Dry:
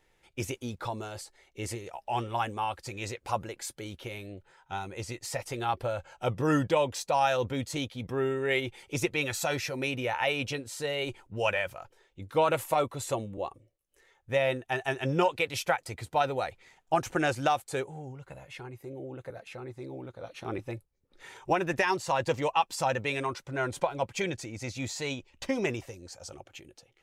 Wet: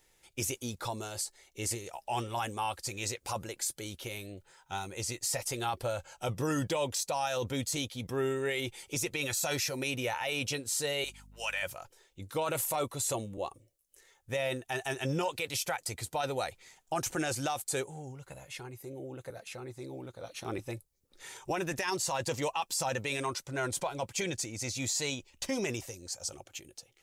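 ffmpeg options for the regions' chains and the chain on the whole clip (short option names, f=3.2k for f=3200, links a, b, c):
-filter_complex "[0:a]asettb=1/sr,asplit=3[a][b][c];[a]atrim=end=11.044[d];[b]atrim=start=11.04:end=11.63,asetpts=PTS-STARTPTS,afade=t=in:d=0.004:c=qsin,afade=t=out:st=0.586:d=0.004:c=qsin,highpass=1.1k,aeval=exprs='val(0)+0.00251*(sin(2*PI*50*n/s)+sin(2*PI*2*50*n/s)/2+sin(2*PI*3*50*n/s)/3+sin(2*PI*4*50*n/s)/4+sin(2*PI*5*50*n/s)/5)':c=same[e];[c]atrim=start=11.626[f];[d][e]acrossfade=d=0.004:c1=hsin:c2=qsin[g];[g][f]acrossfade=d=0.004:c1=qsin:c2=hsin,bass=f=250:g=0,treble=f=4k:g=13,alimiter=limit=-21dB:level=0:latency=1:release=12,volume=-2dB"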